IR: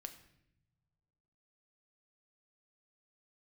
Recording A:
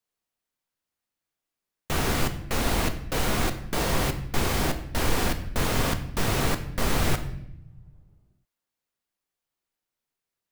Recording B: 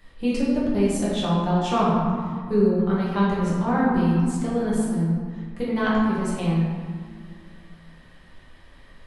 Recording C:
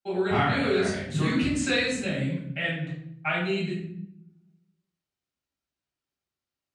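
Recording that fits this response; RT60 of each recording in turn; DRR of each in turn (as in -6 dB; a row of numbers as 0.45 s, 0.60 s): A; no single decay rate, 2.0 s, 0.70 s; 7.0 dB, -8.0 dB, -9.0 dB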